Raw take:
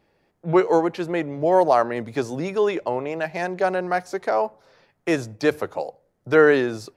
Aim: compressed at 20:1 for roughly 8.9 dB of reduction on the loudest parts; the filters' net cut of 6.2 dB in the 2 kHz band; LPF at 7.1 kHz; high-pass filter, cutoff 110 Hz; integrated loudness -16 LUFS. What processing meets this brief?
high-pass 110 Hz; low-pass 7.1 kHz; peaking EQ 2 kHz -8.5 dB; compression 20:1, threshold -20 dBFS; trim +12 dB

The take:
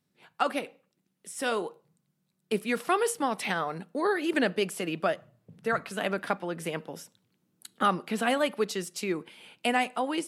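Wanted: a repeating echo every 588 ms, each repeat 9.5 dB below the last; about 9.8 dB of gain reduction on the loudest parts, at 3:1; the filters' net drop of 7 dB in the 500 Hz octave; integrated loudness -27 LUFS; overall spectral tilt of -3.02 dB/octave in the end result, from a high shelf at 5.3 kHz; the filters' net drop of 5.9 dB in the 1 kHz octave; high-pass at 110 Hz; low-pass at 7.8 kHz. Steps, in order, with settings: high-pass 110 Hz; low-pass 7.8 kHz; peaking EQ 500 Hz -7.5 dB; peaking EQ 1 kHz -6 dB; treble shelf 5.3 kHz +6.5 dB; compression 3:1, threshold -38 dBFS; feedback delay 588 ms, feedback 33%, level -9.5 dB; trim +13.5 dB

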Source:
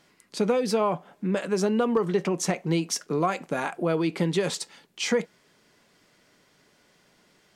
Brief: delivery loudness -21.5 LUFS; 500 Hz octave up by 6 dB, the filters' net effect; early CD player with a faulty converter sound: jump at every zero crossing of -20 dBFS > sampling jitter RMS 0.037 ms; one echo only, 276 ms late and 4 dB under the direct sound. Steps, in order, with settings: peaking EQ 500 Hz +7 dB; delay 276 ms -4 dB; jump at every zero crossing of -20 dBFS; sampling jitter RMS 0.037 ms; trim -2.5 dB

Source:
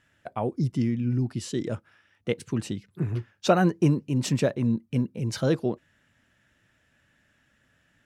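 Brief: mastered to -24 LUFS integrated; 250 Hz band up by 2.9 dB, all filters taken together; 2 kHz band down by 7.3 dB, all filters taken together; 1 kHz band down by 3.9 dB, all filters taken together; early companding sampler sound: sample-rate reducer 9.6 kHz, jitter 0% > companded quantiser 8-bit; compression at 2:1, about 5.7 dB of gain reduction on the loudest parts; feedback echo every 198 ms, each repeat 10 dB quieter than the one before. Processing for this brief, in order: peaking EQ 250 Hz +4 dB; peaking EQ 1 kHz -5 dB; peaking EQ 2 kHz -8.5 dB; compression 2:1, threshold -25 dBFS; feedback delay 198 ms, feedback 32%, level -10 dB; sample-rate reducer 9.6 kHz, jitter 0%; companded quantiser 8-bit; trim +5 dB

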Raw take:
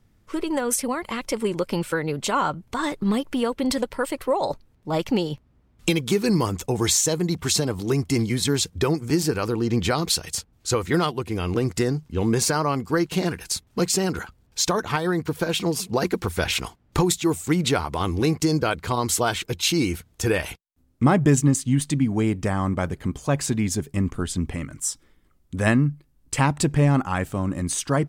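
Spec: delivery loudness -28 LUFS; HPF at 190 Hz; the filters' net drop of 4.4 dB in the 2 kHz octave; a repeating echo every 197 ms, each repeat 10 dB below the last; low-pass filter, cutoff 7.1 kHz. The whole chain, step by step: high-pass 190 Hz; low-pass 7.1 kHz; peaking EQ 2 kHz -6 dB; feedback delay 197 ms, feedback 32%, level -10 dB; trim -2.5 dB

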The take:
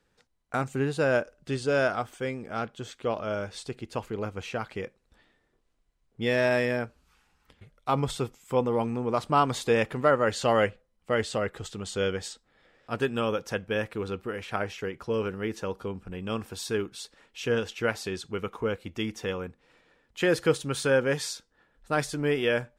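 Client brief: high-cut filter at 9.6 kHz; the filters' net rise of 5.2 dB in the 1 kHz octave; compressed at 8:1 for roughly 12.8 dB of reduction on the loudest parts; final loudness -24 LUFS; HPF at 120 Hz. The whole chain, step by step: high-pass 120 Hz; low-pass 9.6 kHz; peaking EQ 1 kHz +7 dB; compression 8:1, threshold -26 dBFS; trim +9.5 dB

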